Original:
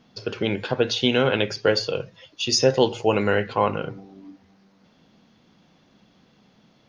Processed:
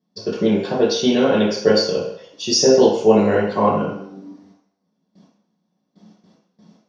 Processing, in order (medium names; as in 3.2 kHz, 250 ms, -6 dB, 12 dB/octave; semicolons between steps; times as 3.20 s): gate with hold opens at -47 dBFS; peaking EQ 7.7 kHz +13.5 dB 0.77 oct; reverberation RT60 0.65 s, pre-delay 3 ms, DRR -6 dB; trim -13 dB